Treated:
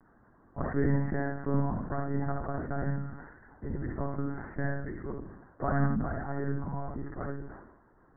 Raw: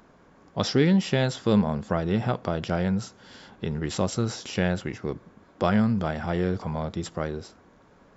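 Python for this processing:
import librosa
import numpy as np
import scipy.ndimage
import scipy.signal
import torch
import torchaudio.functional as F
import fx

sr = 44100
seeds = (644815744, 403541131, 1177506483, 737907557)

p1 = scipy.signal.sosfilt(scipy.signal.butter(16, 1900.0, 'lowpass', fs=sr, output='sos'), x)
p2 = fx.peak_eq(p1, sr, hz=500.0, db=-6.0, octaves=0.34)
p3 = p2 + fx.echo_feedback(p2, sr, ms=65, feedback_pct=24, wet_db=-4.0, dry=0)
p4 = fx.lpc_monotone(p3, sr, seeds[0], pitch_hz=140.0, order=16)
p5 = fx.sustainer(p4, sr, db_per_s=60.0)
y = p5 * 10.0 ** (-7.0 / 20.0)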